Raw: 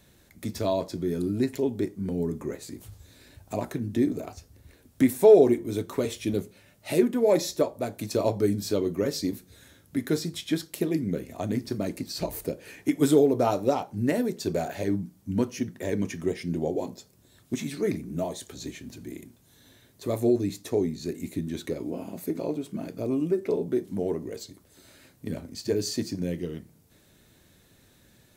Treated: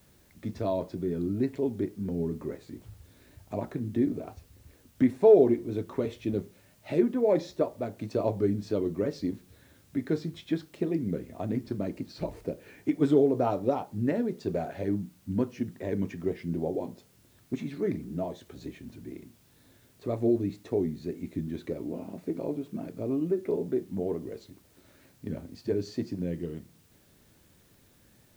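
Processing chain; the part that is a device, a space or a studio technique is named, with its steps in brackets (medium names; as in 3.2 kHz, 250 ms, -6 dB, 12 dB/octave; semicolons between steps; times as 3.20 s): cassette deck with a dirty head (tape spacing loss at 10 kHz 26 dB; wow and flutter; white noise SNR 35 dB); trim -1.5 dB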